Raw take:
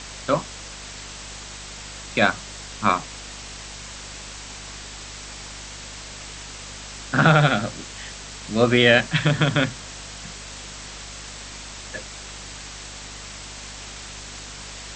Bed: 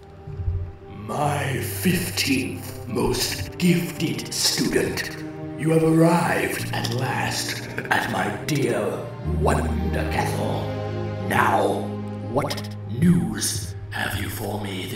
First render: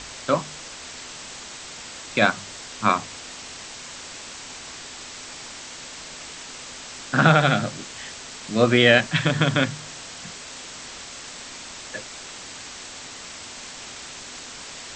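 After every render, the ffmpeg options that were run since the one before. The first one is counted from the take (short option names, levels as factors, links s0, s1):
-af "bandreject=f=50:t=h:w=4,bandreject=f=100:t=h:w=4,bandreject=f=150:t=h:w=4,bandreject=f=200:t=h:w=4"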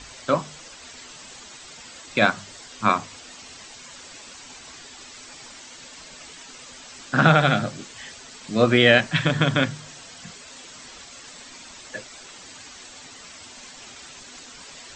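-af "afftdn=nr=9:nf=-39"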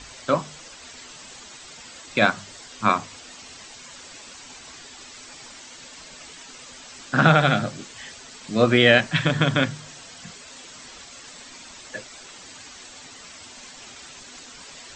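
-af anull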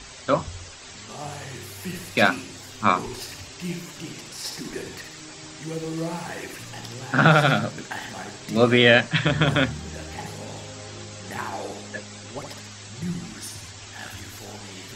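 -filter_complex "[1:a]volume=0.224[s0];[0:a][s0]amix=inputs=2:normalize=0"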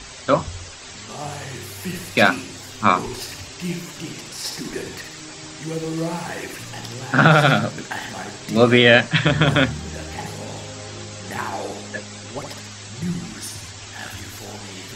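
-af "volume=1.58,alimiter=limit=0.891:level=0:latency=1"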